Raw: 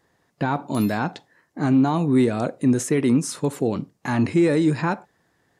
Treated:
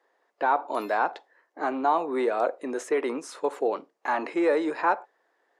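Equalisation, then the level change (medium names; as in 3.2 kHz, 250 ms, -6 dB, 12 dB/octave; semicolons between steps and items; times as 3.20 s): high-pass 420 Hz 24 dB/octave; low-pass 1.6 kHz 6 dB/octave; dynamic bell 1 kHz, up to +5 dB, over -37 dBFS, Q 0.8; 0.0 dB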